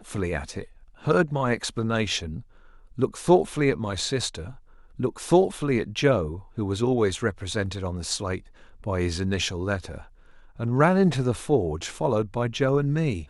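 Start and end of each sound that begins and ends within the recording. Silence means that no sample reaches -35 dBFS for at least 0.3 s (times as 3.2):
1.05–2.41
2.98–4.52
4.99–8.38
8.84–10.02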